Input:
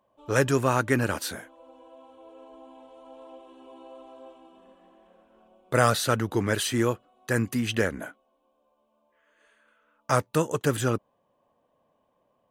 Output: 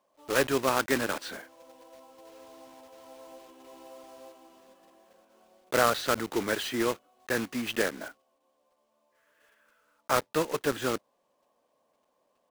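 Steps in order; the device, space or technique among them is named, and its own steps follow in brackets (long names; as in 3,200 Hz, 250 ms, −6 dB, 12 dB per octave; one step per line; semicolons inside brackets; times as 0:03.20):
early digital voice recorder (band-pass filter 260–3,900 Hz; one scale factor per block 3 bits)
level −2 dB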